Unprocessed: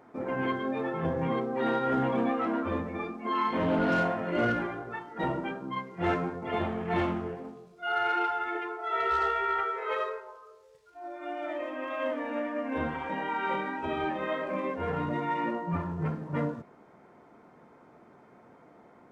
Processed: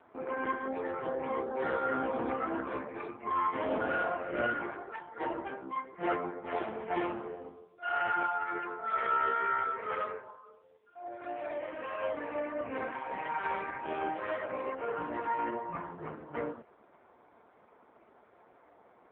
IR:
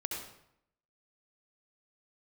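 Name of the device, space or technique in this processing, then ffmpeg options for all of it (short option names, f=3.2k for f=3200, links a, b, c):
telephone: -af "highpass=360,lowpass=3.6k,bandreject=f=60:t=h:w=6,bandreject=f=120:t=h:w=6,bandreject=f=180:t=h:w=6" -ar 8000 -c:a libopencore_amrnb -b:a 5150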